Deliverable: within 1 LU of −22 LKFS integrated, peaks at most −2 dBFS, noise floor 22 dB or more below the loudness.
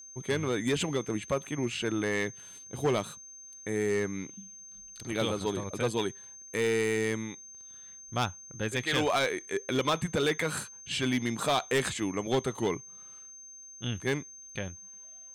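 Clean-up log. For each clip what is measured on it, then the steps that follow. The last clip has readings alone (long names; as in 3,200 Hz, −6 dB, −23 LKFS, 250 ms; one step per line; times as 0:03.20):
share of clipped samples 1.2%; peaks flattened at −21.5 dBFS; interfering tone 6,300 Hz; level of the tone −46 dBFS; integrated loudness −31.0 LKFS; sample peak −21.5 dBFS; target loudness −22.0 LKFS
→ clipped peaks rebuilt −21.5 dBFS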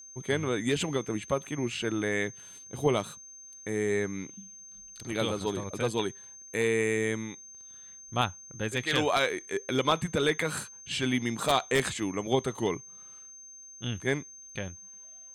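share of clipped samples 0.0%; interfering tone 6,300 Hz; level of the tone −46 dBFS
→ notch filter 6,300 Hz, Q 30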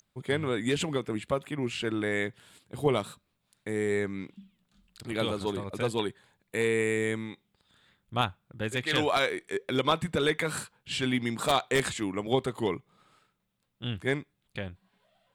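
interfering tone none found; integrated loudness −30.5 LKFS; sample peak −12.5 dBFS; target loudness −22.0 LKFS
→ level +8.5 dB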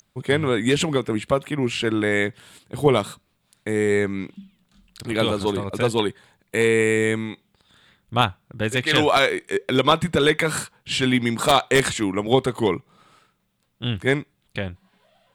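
integrated loudness −22.0 LKFS; sample peak −4.0 dBFS; background noise floor −69 dBFS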